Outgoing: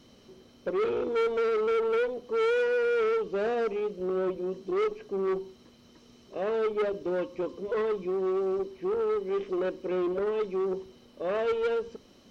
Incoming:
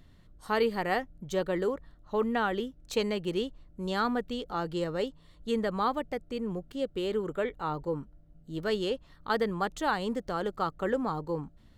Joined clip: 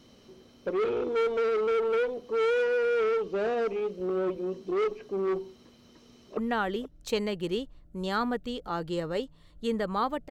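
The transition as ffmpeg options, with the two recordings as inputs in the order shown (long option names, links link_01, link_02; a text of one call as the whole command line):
ffmpeg -i cue0.wav -i cue1.wav -filter_complex "[0:a]apad=whole_dur=10.3,atrim=end=10.3,atrim=end=6.372[link_01];[1:a]atrim=start=2.208:end=6.14[link_02];[link_01][link_02]acrossfade=duration=0.004:curve1=hsin:curve2=hsin,asplit=2[link_03][link_04];[link_04]afade=type=in:start_time=5.93:duration=0.01,afade=type=out:start_time=6.37:duration=0.01,aecho=0:1:480|960:0.334965|0.0502448[link_05];[link_03][link_05]amix=inputs=2:normalize=0" out.wav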